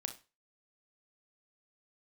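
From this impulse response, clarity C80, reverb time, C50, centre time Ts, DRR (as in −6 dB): 19.0 dB, 0.30 s, 11.5 dB, 10 ms, 6.5 dB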